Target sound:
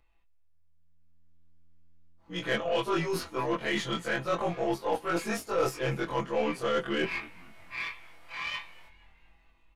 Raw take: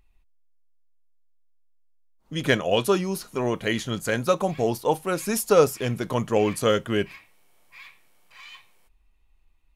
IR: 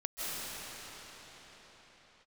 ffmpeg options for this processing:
-filter_complex "[0:a]afftfilt=real='re':imag='-im':win_size=2048:overlap=0.75,aecho=1:1:6:0.76,asplit=2[link_01][link_02];[link_02]highpass=frequency=720:poles=1,volume=12dB,asoftclip=type=tanh:threshold=-6dB[link_03];[link_01][link_03]amix=inputs=2:normalize=0,lowpass=frequency=2300:poles=1,volume=-6dB,equalizer=frequency=160:width=3.1:gain=-3,areverse,acompressor=threshold=-39dB:ratio=4,areverse,highshelf=frequency=5800:gain=-7,asplit=5[link_04][link_05][link_06][link_07][link_08];[link_05]adelay=235,afreqshift=-84,volume=-22dB[link_09];[link_06]adelay=470,afreqshift=-168,volume=-27.5dB[link_10];[link_07]adelay=705,afreqshift=-252,volume=-33dB[link_11];[link_08]adelay=940,afreqshift=-336,volume=-38.5dB[link_12];[link_04][link_09][link_10][link_11][link_12]amix=inputs=5:normalize=0,dynaudnorm=framelen=110:gausssize=21:maxgain=9.5dB,aeval=exprs='0.15*(cos(1*acos(clip(val(0)/0.15,-1,1)))-cos(1*PI/2))+0.00668*(cos(8*acos(clip(val(0)/0.15,-1,1)))-cos(8*PI/2))':channel_layout=same"

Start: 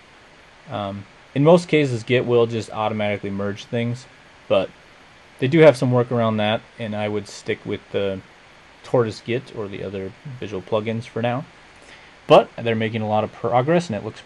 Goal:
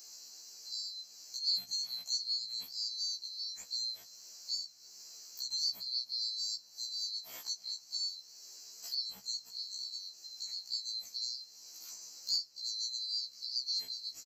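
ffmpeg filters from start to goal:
ffmpeg -i in.wav -filter_complex "[0:a]afftfilt=real='real(if(lt(b,736),b+184*(1-2*mod(floor(b/184),2)),b),0)':imag='imag(if(lt(b,736),b+184*(1-2*mod(floor(b/184),2)),b),0)':win_size=2048:overlap=0.75,adynamicequalizer=threshold=0.02:dfrequency=7600:dqfactor=1.5:tfrequency=7600:tqfactor=1.5:attack=5:release=100:ratio=0.375:range=2.5:mode=cutabove:tftype=bell,acrossover=split=200[link_01][link_02];[link_02]acompressor=threshold=-41dB:ratio=2[link_03];[link_01][link_03]amix=inputs=2:normalize=0,aemphasis=mode=production:type=bsi,asplit=2[link_04][link_05];[link_05]adelay=318,lowpass=frequency=2500:poles=1,volume=-18.5dB,asplit=2[link_06][link_07];[link_07]adelay=318,lowpass=frequency=2500:poles=1,volume=0.44,asplit=2[link_08][link_09];[link_09]adelay=318,lowpass=frequency=2500:poles=1,volume=0.44,asplit=2[link_10][link_11];[link_11]adelay=318,lowpass=frequency=2500:poles=1,volume=0.44[link_12];[link_04][link_06][link_08][link_10][link_12]amix=inputs=5:normalize=0,afftfilt=real='re*1.73*eq(mod(b,3),0)':imag='im*1.73*eq(mod(b,3),0)':win_size=2048:overlap=0.75,volume=-7.5dB" out.wav

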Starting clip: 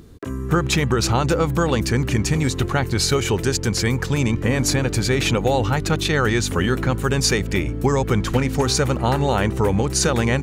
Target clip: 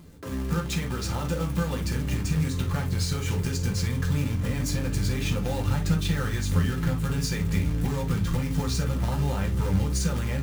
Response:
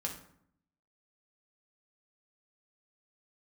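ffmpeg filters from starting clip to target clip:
-filter_complex "[0:a]acompressor=threshold=-22dB:ratio=10,acrusher=bits=2:mode=log:mix=0:aa=0.000001,asubboost=boost=3.5:cutoff=170[link_01];[1:a]atrim=start_sample=2205,atrim=end_sample=3087[link_02];[link_01][link_02]afir=irnorm=-1:irlink=0,volume=-6dB"

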